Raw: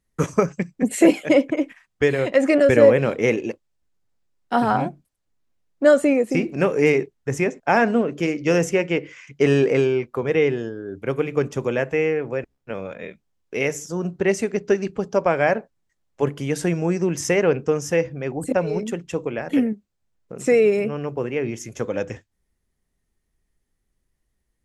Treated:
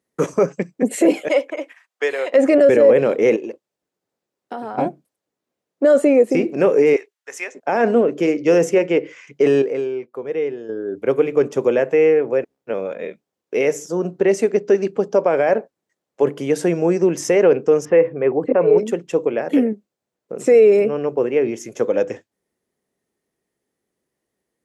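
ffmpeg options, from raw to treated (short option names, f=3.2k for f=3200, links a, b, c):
-filter_complex "[0:a]asettb=1/sr,asplit=3[a][b][c];[a]atrim=end=1.284[d];[b]atrim=start=1.28:end=2.33,asetpts=PTS-STARTPTS,afade=t=in:d=0.004:c=qsin,afade=t=out:st=1.046:d=0.004:c=qsin,highpass=780[e];[c]atrim=start=2.326[f];[d][e]acrossfade=d=0.004:c1=hsin:c2=qsin[g];[g][f]acrossfade=d=0.004:c1=qsin:c2=hsin,asettb=1/sr,asplit=3[h][i][j];[h]atrim=end=3.364[k];[i]atrim=start=3.36:end=4.78,asetpts=PTS-STARTPTS,afade=t=in:d=0.004:c=qsin,afade=t=out:st=1.416:d=0.004:c=qsin,acompressor=threshold=-30dB:ratio=10:attack=3.2:release=140:knee=1:detection=peak[l];[j]atrim=start=4.776[m];[k][l]acrossfade=d=0.004:c1=hsin:c2=qsin[n];[n][m]acrossfade=d=0.004:c1=qsin:c2=hsin,asettb=1/sr,asplit=3[o][p][q];[o]atrim=end=6.964[r];[p]atrim=start=6.96:end=7.55,asetpts=PTS-STARTPTS,afade=t=in:d=0.004:c=qsin,afade=t=out:st=0.586:d=0.004:c=qsin,highpass=1.4k[s];[q]atrim=start=7.546[t];[r][s]acrossfade=d=0.004:c1=hsin:c2=qsin[u];[u][t]acrossfade=d=0.004:c1=qsin:c2=hsin,asettb=1/sr,asplit=3[v][w][x];[v]atrim=end=17.854[y];[w]atrim=start=17.85:end=18.78,asetpts=PTS-STARTPTS,afade=t=in:d=0.004:c=qsin,afade=t=out:st=0.926:d=0.004:c=qsin,highpass=120,equalizer=f=120:t=q:w=4:g=7,equalizer=f=430:t=q:w=4:g=6,equalizer=f=1.1k:t=q:w=4:g=8,equalizer=f=2k:t=q:w=4:g=3,lowpass=f=2.9k:w=0.5412,lowpass=f=2.9k:w=1.3066[z];[x]atrim=start=18.776[aa];[y][z]acrossfade=d=0.004:c1=hsin:c2=qsin[ab];[ab][aa]acrossfade=d=0.004:c1=qsin:c2=hsin,asplit=3[ac][ad][ae];[ac]atrim=end=9.622[af];[ad]atrim=start=9.618:end=10.692,asetpts=PTS-STARTPTS,volume=-11dB[ag];[ae]atrim=start=10.688[ah];[af][ag]acrossfade=d=0.004:c1=hsin:c2=hsin[ai];[ai][ah]acrossfade=d=0.004:c1=hsin:c2=hsin,alimiter=limit=-11.5dB:level=0:latency=1:release=15,highpass=180,equalizer=f=470:t=o:w=1.6:g=8.5"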